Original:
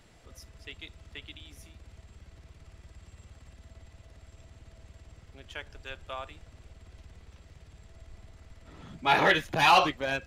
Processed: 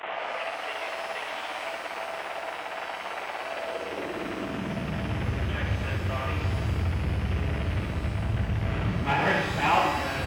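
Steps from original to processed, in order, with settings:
linear delta modulator 16 kbit/s, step −20.5 dBFS
in parallel at −4.5 dB: hard clipping −21.5 dBFS, distortion −15 dB
on the sum: downward expander −12 dBFS
high-pass filter sweep 720 Hz → 97 Hz, 0:03.38–0:05.31
on a send: single-tap delay 71 ms −6 dB
on the sum: downward compressor 2 to 1, threshold −39 dBFS, peak gain reduction 12 dB
low-shelf EQ 110 Hz +10.5 dB
reverb with rising layers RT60 1.9 s, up +12 semitones, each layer −8 dB, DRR 4 dB
level +8.5 dB

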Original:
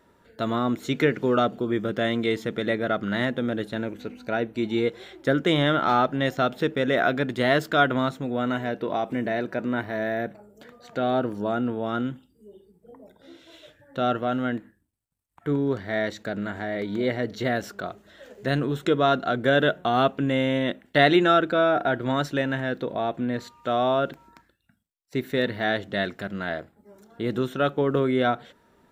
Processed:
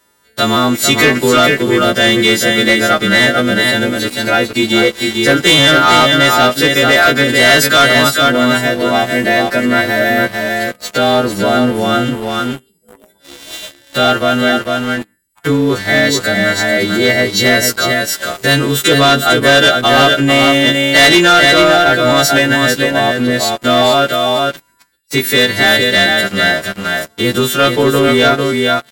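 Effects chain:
every partial snapped to a pitch grid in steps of 2 semitones
high-shelf EQ 2,200 Hz +9 dB
single-tap delay 447 ms −5 dB
leveller curve on the samples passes 3
in parallel at +1.5 dB: downward compressor, threshold −20 dBFS, peak gain reduction 14 dB
on the sum: level −2 dB

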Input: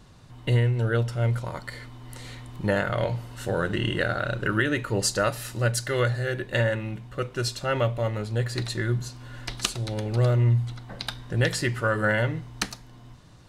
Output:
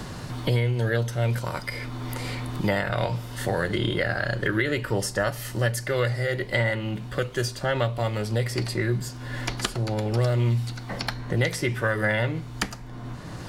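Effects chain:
formants moved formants +2 semitones
multiband upward and downward compressor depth 70%

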